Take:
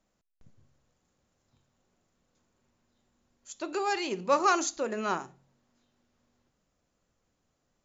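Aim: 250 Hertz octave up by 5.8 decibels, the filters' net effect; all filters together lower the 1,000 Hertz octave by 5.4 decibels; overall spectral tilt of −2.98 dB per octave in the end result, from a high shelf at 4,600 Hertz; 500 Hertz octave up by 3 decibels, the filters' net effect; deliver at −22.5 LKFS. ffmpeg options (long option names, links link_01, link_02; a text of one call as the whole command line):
ffmpeg -i in.wav -af "equalizer=frequency=250:width_type=o:gain=7.5,equalizer=frequency=500:width_type=o:gain=3.5,equalizer=frequency=1000:width_type=o:gain=-9,highshelf=frequency=4600:gain=6.5,volume=6dB" out.wav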